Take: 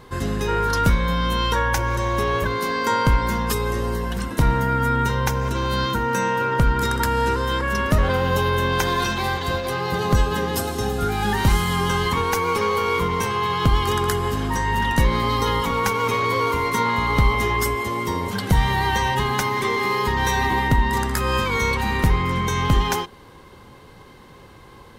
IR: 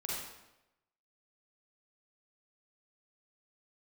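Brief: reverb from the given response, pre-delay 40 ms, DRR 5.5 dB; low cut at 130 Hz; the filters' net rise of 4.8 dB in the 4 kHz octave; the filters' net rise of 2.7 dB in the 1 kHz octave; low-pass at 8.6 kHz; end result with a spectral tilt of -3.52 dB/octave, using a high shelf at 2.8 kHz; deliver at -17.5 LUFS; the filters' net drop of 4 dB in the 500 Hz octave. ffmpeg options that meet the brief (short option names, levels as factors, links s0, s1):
-filter_complex "[0:a]highpass=130,lowpass=8600,equalizer=f=500:t=o:g=-5.5,equalizer=f=1000:t=o:g=3.5,highshelf=f=2800:g=4,equalizer=f=4000:t=o:g=3,asplit=2[s0][s1];[1:a]atrim=start_sample=2205,adelay=40[s2];[s1][s2]afir=irnorm=-1:irlink=0,volume=0.398[s3];[s0][s3]amix=inputs=2:normalize=0,volume=1.33"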